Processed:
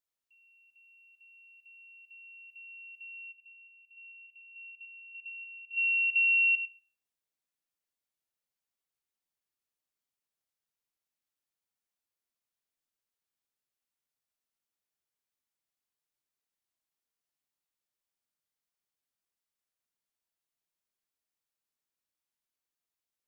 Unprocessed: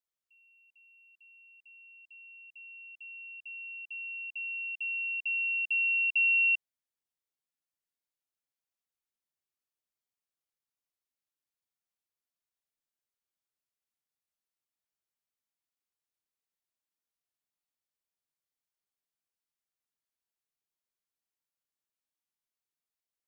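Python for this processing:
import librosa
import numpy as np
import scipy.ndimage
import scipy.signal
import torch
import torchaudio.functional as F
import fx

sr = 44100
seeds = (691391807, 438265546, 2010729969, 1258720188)

y = x + 10.0 ** (-9.5 / 20.0) * np.pad(x, (int(101 * sr / 1000.0), 0))[:len(x)]
y = fx.rev_schroeder(y, sr, rt60_s=0.4, comb_ms=26, drr_db=14.5)
y = fx.vowel_held(y, sr, hz=6.8, at=(3.31, 5.76), fade=0.02)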